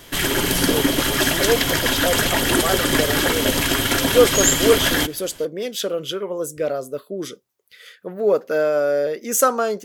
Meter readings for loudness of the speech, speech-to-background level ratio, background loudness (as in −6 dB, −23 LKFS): −23.0 LKFS, −4.5 dB, −18.5 LKFS